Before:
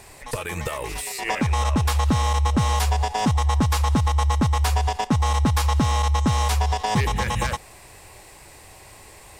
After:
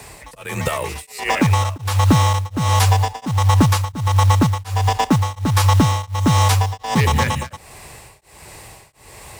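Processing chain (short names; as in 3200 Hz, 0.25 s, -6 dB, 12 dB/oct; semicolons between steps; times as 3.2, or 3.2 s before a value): frequency shift +24 Hz; companded quantiser 6-bit; beating tremolo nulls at 1.4 Hz; gain +7 dB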